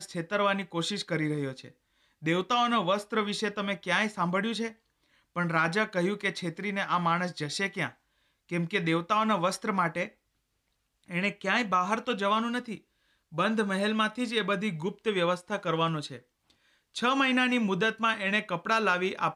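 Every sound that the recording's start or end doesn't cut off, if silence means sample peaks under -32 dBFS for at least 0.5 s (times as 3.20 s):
2.26–4.68 s
5.36–7.88 s
8.52–10.05 s
11.11–12.75 s
13.38–16.16 s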